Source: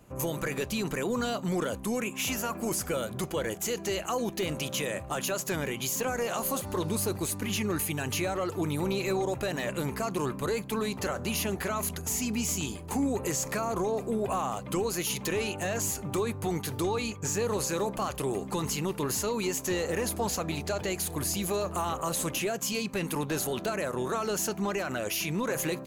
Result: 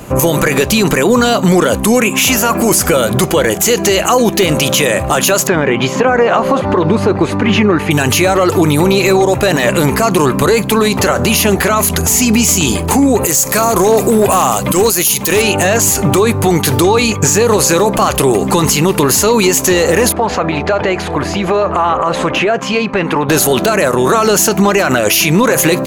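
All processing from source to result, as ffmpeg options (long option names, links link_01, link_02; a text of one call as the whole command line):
ffmpeg -i in.wav -filter_complex "[0:a]asettb=1/sr,asplit=3[link_01][link_02][link_03];[link_01]atrim=end=5.474[link_04];[link_02]atrim=start=5.47:end=7.91,asetpts=PTS-STARTPTS,afade=type=in:duration=0.004:curve=qsin,afade=type=out:start_time=2.436:duration=0.004:curve=qsin,lowpass=2000,lowshelf=frequency=76:gain=-11[link_05];[link_03]atrim=start=7.906[link_06];[link_04][link_05]acrossfade=duration=0.004:curve1=hsin:curve2=qsin[link_07];[link_07][link_06]acrossfade=duration=0.004:curve1=qsin:curve2=hsin,asettb=1/sr,asplit=3[link_08][link_09][link_10];[link_08]atrim=end=13.214[link_11];[link_09]atrim=start=13.21:end=15.42,asetpts=PTS-STARTPTS,afade=type=in:duration=0.004:curve=qsin,afade=type=out:start_time=2.206:duration=0.004:curve=qsin,asoftclip=type=hard:threshold=-24dB,aemphasis=mode=production:type=50kf[link_12];[link_10]atrim=start=15.416[link_13];[link_11][link_12]acrossfade=duration=0.004:curve1=hsin:curve2=qsin[link_14];[link_14][link_13]acrossfade=duration=0.004:curve1=qsin:curve2=hsin,asettb=1/sr,asplit=3[link_15][link_16][link_17];[link_15]atrim=end=20.124[link_18];[link_16]atrim=start=20.12:end=23.29,asetpts=PTS-STARTPTS,afade=type=in:duration=0.004:curve=qsin,afade=type=out:start_time=3.166:duration=0.004:curve=qsin,lowpass=1900,acompressor=threshold=-31dB:ratio=6:attack=3.2:release=140:knee=1:detection=peak,lowshelf=frequency=390:gain=-9[link_19];[link_17]atrim=start=23.286[link_20];[link_18][link_19]acrossfade=duration=0.004:curve1=hsin:curve2=qsin[link_21];[link_21][link_20]acrossfade=duration=0.004:curve1=qsin:curve2=hsin,lowshelf=frequency=180:gain=-3.5,acompressor=threshold=-33dB:ratio=6,alimiter=level_in=28dB:limit=-1dB:release=50:level=0:latency=1,volume=-1dB" out.wav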